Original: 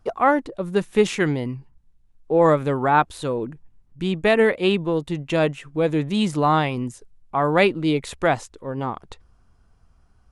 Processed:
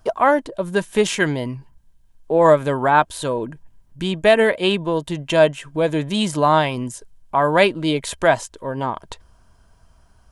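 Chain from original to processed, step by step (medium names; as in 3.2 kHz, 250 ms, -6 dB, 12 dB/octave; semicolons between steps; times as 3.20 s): treble shelf 4 kHz +9.5 dB; in parallel at -2 dB: compression, threshold -33 dBFS, peak gain reduction 20 dB; on the sum: small resonant body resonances 630/960/1600/3100 Hz, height 10 dB, ringing for 40 ms; trim -1.5 dB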